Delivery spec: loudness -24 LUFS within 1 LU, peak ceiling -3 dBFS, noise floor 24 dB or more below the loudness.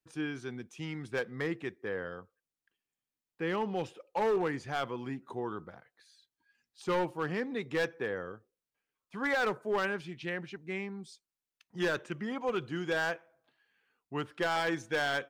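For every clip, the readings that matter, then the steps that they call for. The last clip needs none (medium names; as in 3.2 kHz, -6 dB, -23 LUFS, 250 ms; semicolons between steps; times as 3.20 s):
clipped samples 1.2%; clipping level -25.0 dBFS; loudness -34.5 LUFS; peak level -25.0 dBFS; loudness target -24.0 LUFS
-> clip repair -25 dBFS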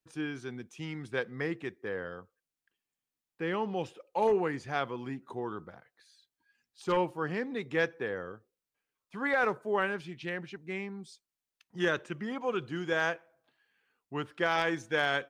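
clipped samples 0.0%; loudness -33.5 LUFS; peak level -16.0 dBFS; loudness target -24.0 LUFS
-> trim +9.5 dB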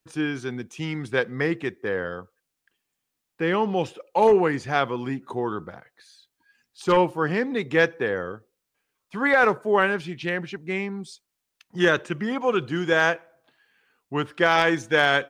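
loudness -24.0 LUFS; peak level -6.5 dBFS; noise floor -81 dBFS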